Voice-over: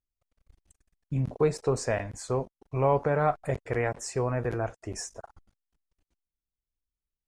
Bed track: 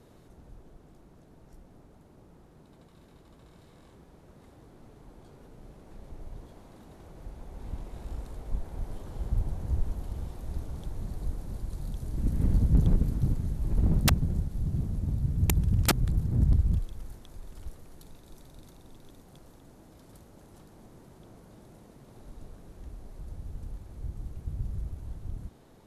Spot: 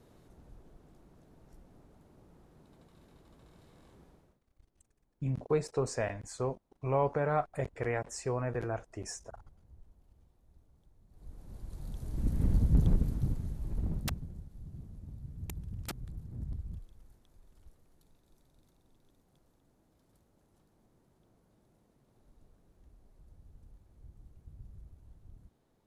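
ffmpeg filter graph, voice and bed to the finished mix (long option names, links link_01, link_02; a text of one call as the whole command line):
ffmpeg -i stem1.wav -i stem2.wav -filter_complex "[0:a]adelay=4100,volume=-5dB[link_01];[1:a]volume=20.5dB,afade=type=out:start_time=4.06:duration=0.34:silence=0.0668344,afade=type=in:start_time=11.09:duration=1.13:silence=0.0562341,afade=type=out:start_time=12.9:duration=1.42:silence=0.211349[link_02];[link_01][link_02]amix=inputs=2:normalize=0" out.wav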